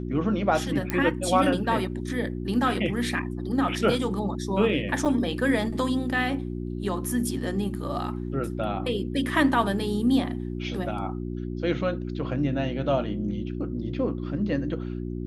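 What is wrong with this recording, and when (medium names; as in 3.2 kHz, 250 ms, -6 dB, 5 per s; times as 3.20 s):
hum 60 Hz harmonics 6 -32 dBFS
0.90 s: pop -12 dBFS
5.05–5.06 s: dropout 5.8 ms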